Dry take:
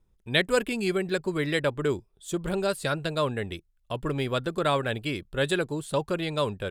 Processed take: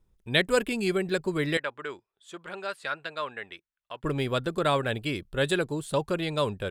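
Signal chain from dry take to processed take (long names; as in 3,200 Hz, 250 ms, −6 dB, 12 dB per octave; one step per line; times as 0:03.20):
0:01.57–0:04.04: resonant band-pass 1,700 Hz, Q 0.99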